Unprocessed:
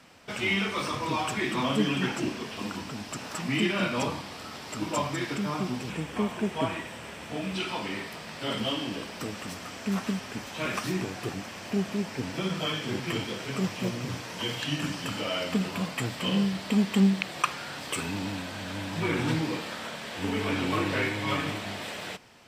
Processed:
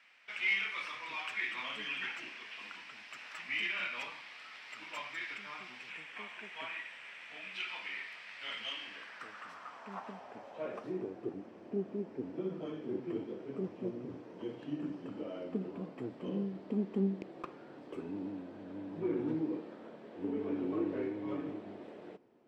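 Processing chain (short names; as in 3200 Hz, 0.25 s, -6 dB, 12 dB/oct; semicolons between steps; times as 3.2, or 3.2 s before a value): tracing distortion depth 0.093 ms; band-pass sweep 2200 Hz -> 350 Hz, 8.78–11.24; gain -1.5 dB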